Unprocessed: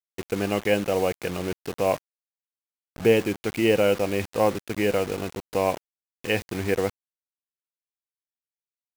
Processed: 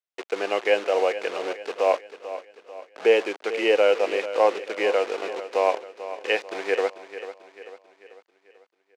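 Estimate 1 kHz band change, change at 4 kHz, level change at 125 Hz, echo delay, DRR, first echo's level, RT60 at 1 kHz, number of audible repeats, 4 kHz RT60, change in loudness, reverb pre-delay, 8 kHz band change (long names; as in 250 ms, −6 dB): +3.5 dB, +1.5 dB, below −25 dB, 442 ms, no reverb audible, −13.0 dB, no reverb audible, 4, no reverb audible, +1.0 dB, no reverb audible, can't be measured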